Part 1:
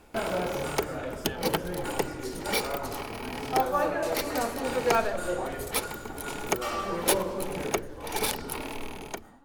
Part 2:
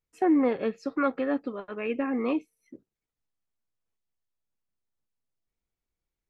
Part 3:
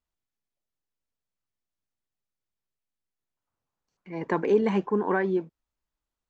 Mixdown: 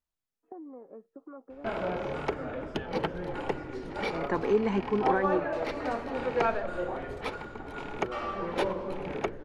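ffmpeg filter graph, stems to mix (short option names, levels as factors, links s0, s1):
-filter_complex "[0:a]lowpass=2600,adelay=1500,volume=0.75[s0];[1:a]lowpass=f=1100:w=0.5412,lowpass=f=1100:w=1.3066,acompressor=threshold=0.0141:ratio=5,highpass=220,adelay=300,volume=0.447[s1];[2:a]volume=0.668[s2];[s0][s1][s2]amix=inputs=3:normalize=0"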